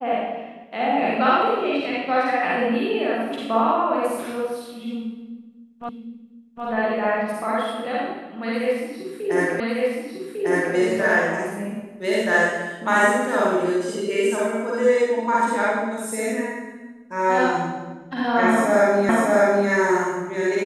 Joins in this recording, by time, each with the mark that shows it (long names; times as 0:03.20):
0:05.89: the same again, the last 0.76 s
0:09.60: the same again, the last 1.15 s
0:19.09: the same again, the last 0.6 s